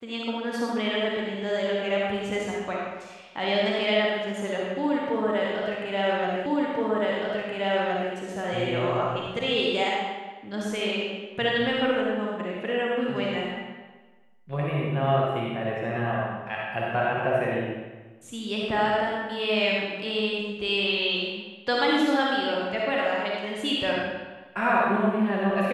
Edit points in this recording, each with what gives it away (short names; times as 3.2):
6.46 repeat of the last 1.67 s